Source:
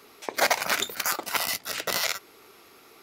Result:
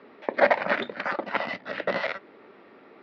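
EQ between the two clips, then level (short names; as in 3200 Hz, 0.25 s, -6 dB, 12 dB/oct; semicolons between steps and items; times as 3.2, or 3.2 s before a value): air absorption 400 m; speaker cabinet 120–5300 Hz, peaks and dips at 200 Hz +4 dB, 570 Hz +10 dB, 890 Hz +3 dB, 1800 Hz +8 dB; bell 250 Hz +7.5 dB 1.1 oct; 0.0 dB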